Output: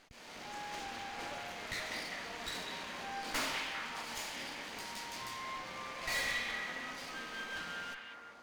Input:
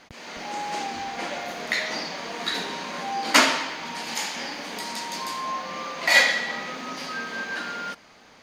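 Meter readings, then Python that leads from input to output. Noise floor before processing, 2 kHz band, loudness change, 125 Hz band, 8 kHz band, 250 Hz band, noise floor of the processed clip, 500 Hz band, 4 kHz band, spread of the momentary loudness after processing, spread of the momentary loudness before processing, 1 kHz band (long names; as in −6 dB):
−52 dBFS, −14.0 dB, −14.0 dB, −9.0 dB, −13.5 dB, −15.0 dB, −52 dBFS, −14.5 dB, −13.5 dB, 8 LU, 15 LU, −14.0 dB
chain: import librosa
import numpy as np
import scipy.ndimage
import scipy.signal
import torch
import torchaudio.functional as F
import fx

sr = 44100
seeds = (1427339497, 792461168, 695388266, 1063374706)

y = np.maximum(x, 0.0)
y = fx.tube_stage(y, sr, drive_db=15.0, bias=0.65)
y = fx.echo_stepped(y, sr, ms=199, hz=2600.0, octaves=-0.7, feedback_pct=70, wet_db=-1)
y = y * librosa.db_to_amplitude(-3.5)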